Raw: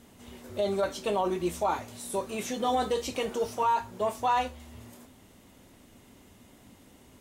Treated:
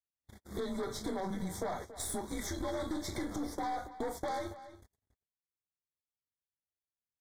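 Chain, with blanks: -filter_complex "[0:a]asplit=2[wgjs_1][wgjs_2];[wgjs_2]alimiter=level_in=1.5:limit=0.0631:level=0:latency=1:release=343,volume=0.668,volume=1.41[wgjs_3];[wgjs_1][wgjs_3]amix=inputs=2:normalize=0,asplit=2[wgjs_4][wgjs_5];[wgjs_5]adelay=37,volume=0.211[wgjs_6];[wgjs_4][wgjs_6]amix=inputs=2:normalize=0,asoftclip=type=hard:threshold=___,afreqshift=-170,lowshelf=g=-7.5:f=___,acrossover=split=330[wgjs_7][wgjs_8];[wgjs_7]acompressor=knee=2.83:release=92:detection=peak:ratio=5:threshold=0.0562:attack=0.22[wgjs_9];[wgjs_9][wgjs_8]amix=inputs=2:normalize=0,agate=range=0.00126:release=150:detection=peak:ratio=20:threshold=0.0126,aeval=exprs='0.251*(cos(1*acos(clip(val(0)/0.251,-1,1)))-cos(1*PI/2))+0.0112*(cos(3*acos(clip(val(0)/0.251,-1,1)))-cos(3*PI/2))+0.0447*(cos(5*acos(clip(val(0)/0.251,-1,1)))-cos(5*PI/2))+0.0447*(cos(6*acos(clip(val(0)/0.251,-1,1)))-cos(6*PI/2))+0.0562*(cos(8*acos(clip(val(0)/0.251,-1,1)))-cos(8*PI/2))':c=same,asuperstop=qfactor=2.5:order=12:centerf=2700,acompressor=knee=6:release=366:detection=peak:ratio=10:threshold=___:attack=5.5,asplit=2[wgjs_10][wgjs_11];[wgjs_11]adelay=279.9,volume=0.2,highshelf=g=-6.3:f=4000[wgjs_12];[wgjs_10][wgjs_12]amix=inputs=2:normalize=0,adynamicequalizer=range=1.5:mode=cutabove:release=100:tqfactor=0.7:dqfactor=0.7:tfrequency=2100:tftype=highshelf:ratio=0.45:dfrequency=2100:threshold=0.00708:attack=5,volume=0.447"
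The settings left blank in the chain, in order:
0.168, 70, 0.0562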